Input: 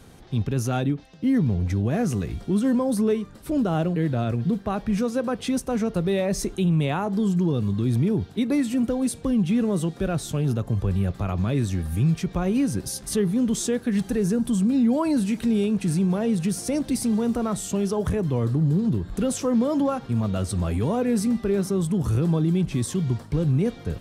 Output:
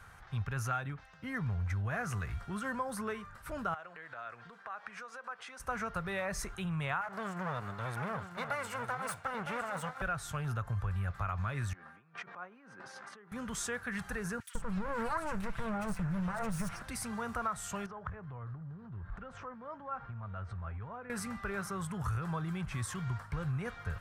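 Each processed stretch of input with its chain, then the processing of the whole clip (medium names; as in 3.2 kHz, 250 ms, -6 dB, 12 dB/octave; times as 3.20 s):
3.74–5.60 s: band-pass 430–7700 Hz + compression 5:1, threshold -37 dBFS + tape noise reduction on one side only decoder only
7.01–10.02 s: comb filter that takes the minimum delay 1.4 ms + high-pass 170 Hz + delay 958 ms -9.5 dB
11.73–13.32 s: compressor with a negative ratio -32 dBFS + high-pass 240 Hz 24 dB/octave + tape spacing loss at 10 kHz 30 dB
14.40–16.82 s: comb filter that takes the minimum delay 5.9 ms + bass shelf 380 Hz +9 dB + bands offset in time highs, lows 150 ms, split 2.3 kHz
17.86–21.10 s: tape spacing loss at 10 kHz 34 dB + compression 12:1, threshold -29 dBFS
whole clip: FFT filter 100 Hz 0 dB, 300 Hz -18 dB, 1.4 kHz +13 dB, 3.6 kHz -5 dB, 6.9 kHz -3 dB; compression, threshold -25 dBFS; trim -6 dB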